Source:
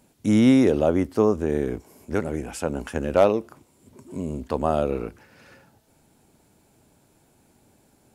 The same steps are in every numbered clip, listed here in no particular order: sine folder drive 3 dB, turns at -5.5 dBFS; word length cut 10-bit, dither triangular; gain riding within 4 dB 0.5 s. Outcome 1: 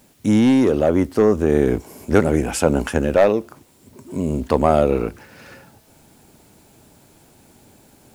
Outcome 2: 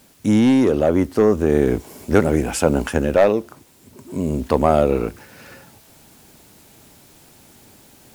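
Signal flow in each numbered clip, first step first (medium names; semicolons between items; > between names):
sine folder > gain riding > word length cut; word length cut > sine folder > gain riding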